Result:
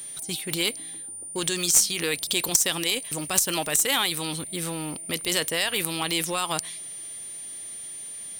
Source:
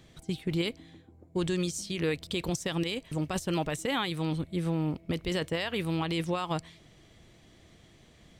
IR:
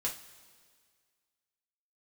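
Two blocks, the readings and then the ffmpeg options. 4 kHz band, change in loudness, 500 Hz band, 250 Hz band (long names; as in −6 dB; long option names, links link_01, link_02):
+11.0 dB, +7.0 dB, +1.0 dB, −2.5 dB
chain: -af "aeval=exprs='val(0)+0.00158*sin(2*PI*9200*n/s)':channel_layout=same,apsyclip=26dB,aemphasis=mode=production:type=riaa,aeval=exprs='5.01*(cos(1*acos(clip(val(0)/5.01,-1,1)))-cos(1*PI/2))+0.631*(cos(3*acos(clip(val(0)/5.01,-1,1)))-cos(3*PI/2))+0.562*(cos(4*acos(clip(val(0)/5.01,-1,1)))-cos(4*PI/2))+0.316*(cos(6*acos(clip(val(0)/5.01,-1,1)))-cos(6*PI/2))':channel_layout=same,volume=-15.5dB"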